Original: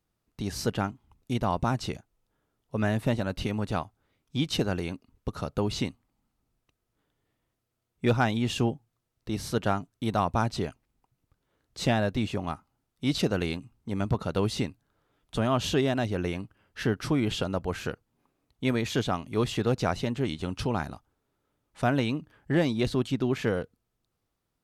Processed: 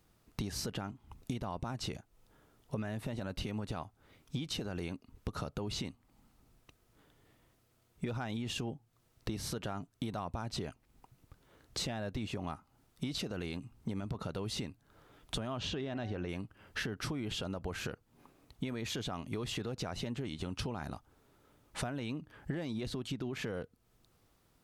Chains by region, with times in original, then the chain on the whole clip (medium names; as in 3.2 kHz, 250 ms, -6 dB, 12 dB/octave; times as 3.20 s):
15.59–16.29 s: low-pass 4.6 kHz + de-hum 187.2 Hz, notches 13
whole clip: peak limiter -23 dBFS; compression 6:1, threshold -47 dBFS; trim +10.5 dB